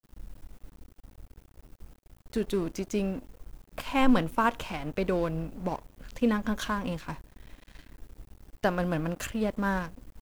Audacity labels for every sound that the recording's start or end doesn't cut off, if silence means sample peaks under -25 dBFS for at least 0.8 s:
2.330000	7.120000	sound